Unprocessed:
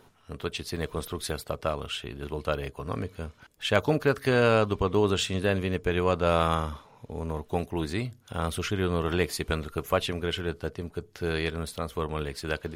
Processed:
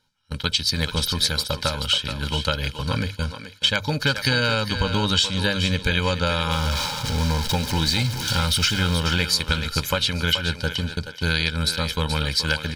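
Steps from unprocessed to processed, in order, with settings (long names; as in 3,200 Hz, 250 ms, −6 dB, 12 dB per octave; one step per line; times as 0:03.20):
0:06.51–0:08.94: converter with a step at zero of −34 dBFS
mains-hum notches 50/100 Hz
noise gate −40 dBFS, range −24 dB
parametric band 4,500 Hz +13.5 dB 1.3 octaves
comb filter 1.3 ms, depth 83%
downward compressor 6 to 1, threshold −25 dBFS, peak gain reduction 12 dB
Butterworth band-reject 690 Hz, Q 2.7
feedback echo with a high-pass in the loop 428 ms, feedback 26%, high-pass 340 Hz, level −8.5 dB
level +7.5 dB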